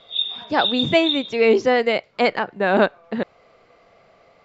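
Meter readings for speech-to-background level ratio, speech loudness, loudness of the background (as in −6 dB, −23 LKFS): 3.5 dB, −20.0 LKFS, −23.5 LKFS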